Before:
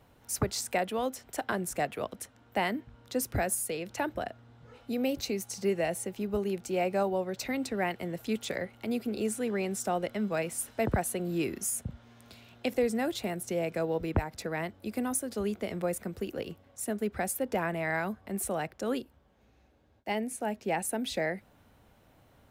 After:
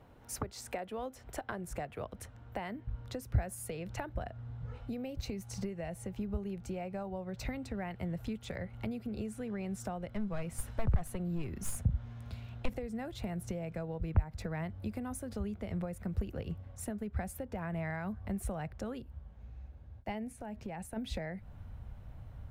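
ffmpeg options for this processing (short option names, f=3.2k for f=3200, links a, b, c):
-filter_complex "[0:a]asettb=1/sr,asplit=3[a][b][c];[a]atrim=end=10.154[d];[b]atrim=start=10.15:end=12.74,asetpts=PTS-STARTPTS,afade=t=in:d=0.004:c=qsin,afade=t=out:st=2.586:d=0.004:c=qsin,aeval=exprs='clip(val(0),-1,0.0316)':c=same[e];[c]atrim=start=12.736[f];[d][e]acrossfade=d=0.004:c1=hsin:c2=qsin[g];[g][f]acrossfade=d=0.004:c1=qsin:c2=hsin,asplit=3[h][i][j];[h]afade=t=out:st=20.31:d=0.02[k];[i]acompressor=threshold=-41dB:ratio=4:attack=3.2:release=140:knee=1:detection=peak,afade=t=in:st=20.31:d=0.02,afade=t=out:st=20.96:d=0.02[l];[j]afade=t=in:st=20.96:d=0.02[m];[k][l][m]amix=inputs=3:normalize=0,highshelf=f=2.7k:g=-11.5,acompressor=threshold=-38dB:ratio=10,asubboost=boost=10:cutoff=100,volume=3dB"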